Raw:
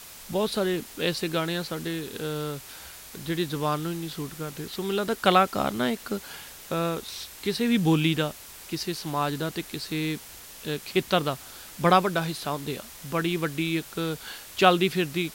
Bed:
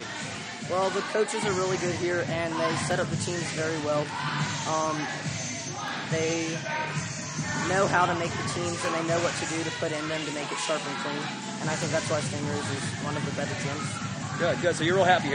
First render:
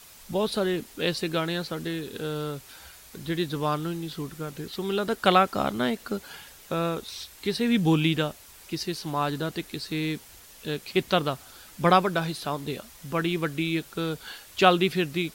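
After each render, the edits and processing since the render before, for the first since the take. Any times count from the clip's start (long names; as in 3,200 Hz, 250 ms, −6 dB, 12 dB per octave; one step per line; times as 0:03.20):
broadband denoise 6 dB, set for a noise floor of −45 dBFS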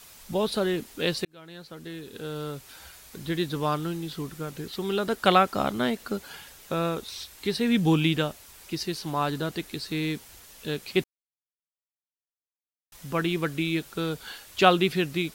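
0:01.25–0:02.82: fade in
0:11.04–0:12.92: silence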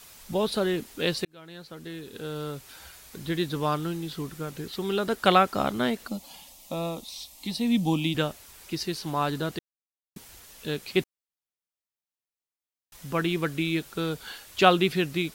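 0:06.07–0:08.15: phaser with its sweep stopped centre 410 Hz, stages 6
0:09.59–0:10.16: silence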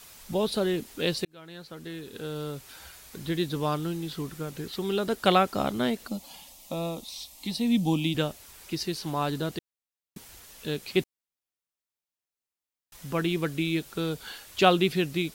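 dynamic equaliser 1,400 Hz, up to −4 dB, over −41 dBFS, Q 0.93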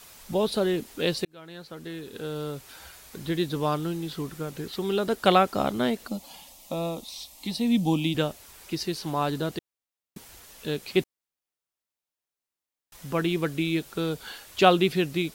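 parametric band 640 Hz +2.5 dB 2.6 octaves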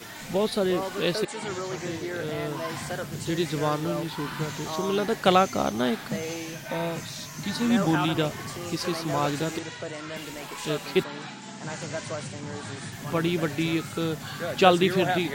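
mix in bed −6 dB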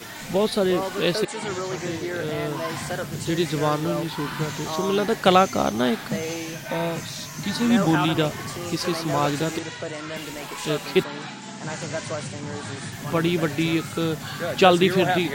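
level +3.5 dB
brickwall limiter −3 dBFS, peak gain reduction 2.5 dB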